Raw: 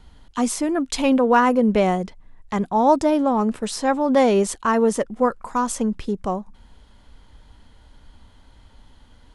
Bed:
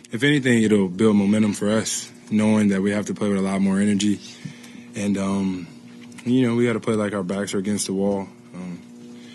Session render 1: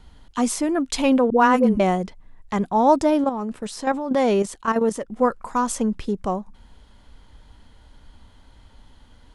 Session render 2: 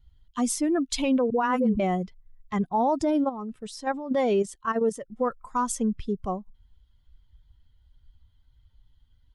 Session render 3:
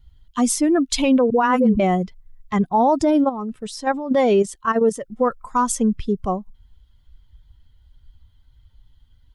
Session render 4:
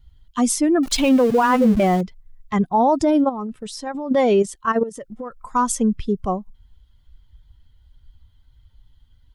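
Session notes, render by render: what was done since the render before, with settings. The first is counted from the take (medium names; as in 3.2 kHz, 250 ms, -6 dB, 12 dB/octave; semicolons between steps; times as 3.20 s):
1.30–1.80 s: phase dispersion highs, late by 76 ms, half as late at 420 Hz; 3.24–5.12 s: level held to a coarse grid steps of 9 dB
expander on every frequency bin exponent 1.5; peak limiter -16.5 dBFS, peak gain reduction 10.5 dB
trim +7 dB
0.83–2.01 s: jump at every zero crossing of -28 dBFS; 3.46–3.95 s: compression 3:1, threshold -26 dBFS; 4.83–5.44 s: compression 5:1, threshold -29 dBFS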